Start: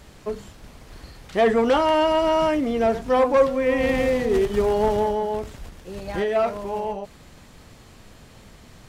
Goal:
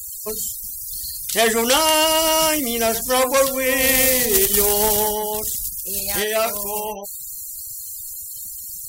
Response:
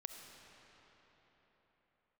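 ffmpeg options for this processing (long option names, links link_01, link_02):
-af "aemphasis=mode=production:type=75fm,crystalizer=i=6.5:c=0,afftfilt=real='re*gte(hypot(re,im),0.0316)':imag='im*gte(hypot(re,im),0.0316)':win_size=1024:overlap=0.75,volume=-1.5dB"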